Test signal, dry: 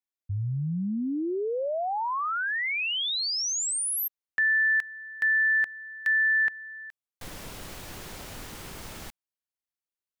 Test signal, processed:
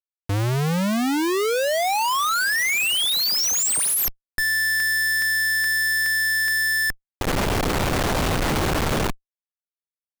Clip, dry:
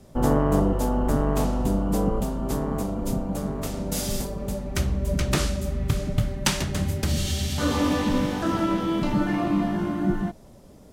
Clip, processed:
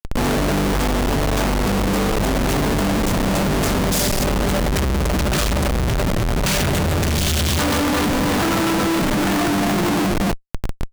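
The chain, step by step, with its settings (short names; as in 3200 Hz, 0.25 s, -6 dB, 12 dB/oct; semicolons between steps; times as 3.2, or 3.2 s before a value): limiter -17 dBFS; Schmitt trigger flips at -40 dBFS; gain +8 dB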